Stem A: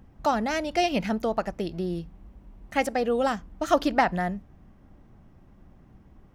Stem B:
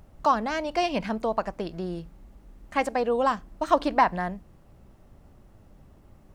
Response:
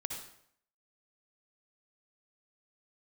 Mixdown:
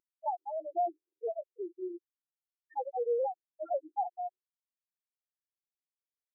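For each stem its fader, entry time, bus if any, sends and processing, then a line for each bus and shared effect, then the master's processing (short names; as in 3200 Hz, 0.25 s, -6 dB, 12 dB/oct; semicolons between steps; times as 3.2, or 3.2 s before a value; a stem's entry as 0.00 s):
-1.5 dB, 0.00 s, send -18 dB, wavefolder -13 dBFS
-19.5 dB, 0.4 ms, no send, spectral dilation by 60 ms; reverb removal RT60 1.9 s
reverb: on, RT60 0.65 s, pre-delay 52 ms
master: loudest bins only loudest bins 1; brick-wall FIR high-pass 330 Hz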